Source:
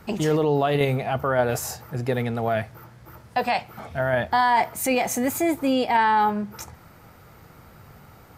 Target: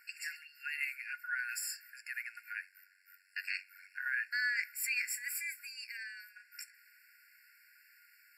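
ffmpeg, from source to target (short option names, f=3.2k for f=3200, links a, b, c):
-filter_complex "[0:a]asettb=1/sr,asplit=3[a][b][c];[a]atrim=end=2.504[d];[b]atrim=start=2.5:end=4.06,asetpts=PTS-STARTPTS,afade=t=in:d=0.004:c=qsin,afade=t=out:st=1.556:d=0.004:c=qsin,aeval=exprs='val(0)*sin(2*PI*47*n/s)':c=same[e];[c]atrim=start=4.056[f];[d][e]acrossfade=d=0.004:c1=hsin:c2=qsin[g];[g][f]acrossfade=d=0.004:c1=qsin:c2=hsin,asettb=1/sr,asplit=3[h][i][j];[h]atrim=end=5.624[k];[i]atrim=start=5.62:end=6.36,asetpts=PTS-STARTPTS,afade=t=in:d=0.004:c=qsin,afade=t=out:st=0.736:d=0.004:c=qsin,acrossover=split=340|3000[l][m][n];[m]acompressor=threshold=-35dB:ratio=6[o];[l][o][n]amix=inputs=3:normalize=0[p];[j]atrim=start=6.356[q];[k][p]acrossfade=d=0.004:c1=hsin:c2=qsin[r];[r][q]acrossfade=d=0.004:c1=qsin:c2=hsin,afftfilt=real='re*eq(mod(floor(b*sr/1024/1400),2),1)':imag='im*eq(mod(floor(b*sr/1024/1400),2),1)':win_size=1024:overlap=0.75,volume=-4.5dB"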